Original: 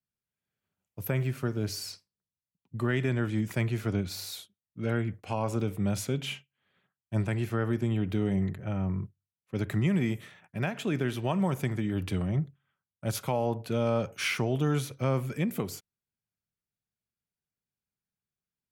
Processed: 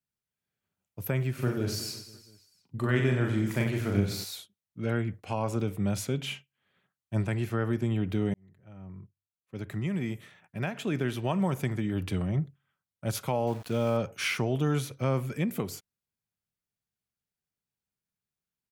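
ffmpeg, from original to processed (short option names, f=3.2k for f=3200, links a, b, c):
-filter_complex "[0:a]asplit=3[a][b][c];[a]afade=t=out:st=1.38:d=0.02[d];[b]aecho=1:1:40|92|159.6|247.5|361.7|510.2|703.3:0.631|0.398|0.251|0.158|0.1|0.0631|0.0398,afade=t=in:st=1.38:d=0.02,afade=t=out:st=4.23:d=0.02[e];[c]afade=t=in:st=4.23:d=0.02[f];[d][e][f]amix=inputs=3:normalize=0,asettb=1/sr,asplit=3[g][h][i];[g]atrim=end=13.474[j];[h]atrim=start=13.47:end=13.97,asetpts=PTS-STARTPTS,afade=t=in:d=0.004:c=qsin,afade=t=out:st=0.496:d=0.004:c=qsin,aeval=exprs='val(0)*gte(abs(val(0)),0.00708)':c=same[k];[i]atrim=start=13.966[l];[j][k]acrossfade=d=0.004:c1=hsin:c2=qsin[m];[m][l]acrossfade=d=0.004:c1=qsin:c2=hsin,asplit=2[n][o];[n]atrim=end=8.34,asetpts=PTS-STARTPTS,afade=t=out:st=8.336:d=0.004:c=hsin[p];[o]atrim=start=8.34,asetpts=PTS-STARTPTS,afade=t=in:d=2.74[q];[p][q]concat=n=2:v=0:a=1"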